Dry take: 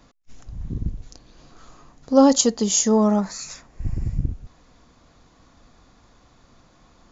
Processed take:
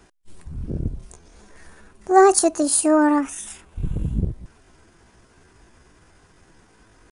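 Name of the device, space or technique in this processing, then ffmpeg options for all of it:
chipmunk voice: -af "asetrate=62367,aresample=44100,atempo=0.707107,volume=1dB"

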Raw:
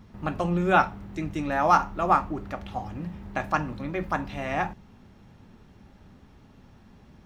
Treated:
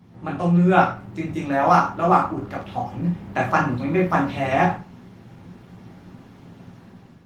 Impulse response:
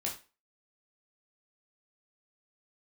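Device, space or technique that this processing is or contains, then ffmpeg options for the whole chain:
far-field microphone of a smart speaker: -filter_complex "[1:a]atrim=start_sample=2205[link_01];[0:a][link_01]afir=irnorm=-1:irlink=0,highpass=frequency=85:width=0.5412,highpass=frequency=85:width=1.3066,dynaudnorm=framelen=490:gausssize=3:maxgain=8dB" -ar 48000 -c:a libopus -b:a 20k

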